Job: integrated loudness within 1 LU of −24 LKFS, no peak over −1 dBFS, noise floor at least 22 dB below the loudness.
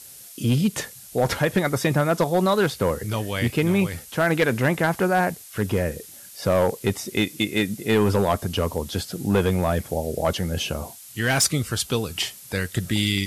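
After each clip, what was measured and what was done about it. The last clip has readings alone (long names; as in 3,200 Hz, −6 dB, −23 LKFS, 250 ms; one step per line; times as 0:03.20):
share of clipped samples 0.6%; peaks flattened at −12.5 dBFS; background noise floor −44 dBFS; target noise floor −46 dBFS; integrated loudness −23.5 LKFS; sample peak −12.5 dBFS; target loudness −24.0 LKFS
→ clipped peaks rebuilt −12.5 dBFS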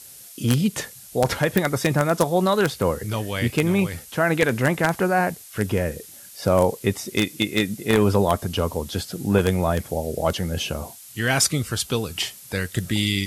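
share of clipped samples 0.0%; background noise floor −44 dBFS; target noise floor −45 dBFS
→ broadband denoise 6 dB, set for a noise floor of −44 dBFS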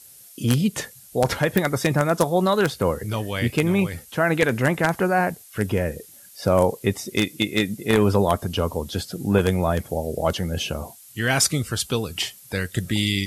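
background noise floor −47 dBFS; integrated loudness −23.0 LKFS; sample peak −3.0 dBFS; target loudness −24.0 LKFS
→ level −1 dB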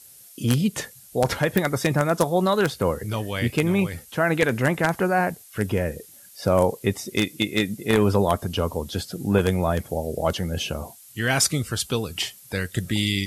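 integrated loudness −24.0 LKFS; sample peak −4.0 dBFS; background noise floor −48 dBFS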